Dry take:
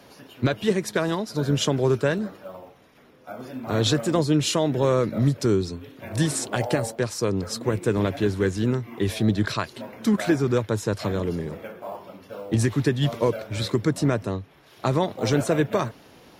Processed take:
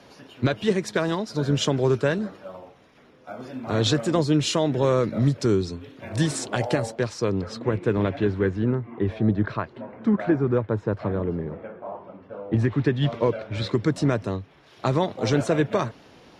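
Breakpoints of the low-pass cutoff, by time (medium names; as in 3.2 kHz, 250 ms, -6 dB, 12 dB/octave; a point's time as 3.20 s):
6.72 s 7.5 kHz
7.65 s 3.1 kHz
8.17 s 3.1 kHz
8.78 s 1.5 kHz
12.38 s 1.5 kHz
13.00 s 3.5 kHz
13.50 s 3.5 kHz
14.02 s 6.8 kHz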